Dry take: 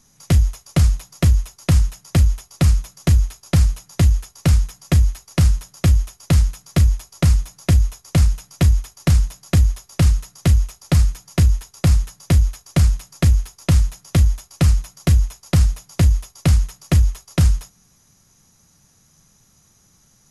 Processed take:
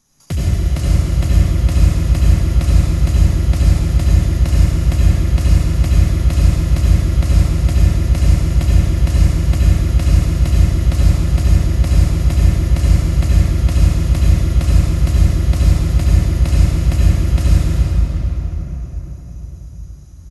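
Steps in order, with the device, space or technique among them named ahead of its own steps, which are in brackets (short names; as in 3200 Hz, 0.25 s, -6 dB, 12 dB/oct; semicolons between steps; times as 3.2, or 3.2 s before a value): cave (echo 0.354 s -12 dB; reverb RT60 4.8 s, pre-delay 65 ms, DRR -8 dB); gain -6.5 dB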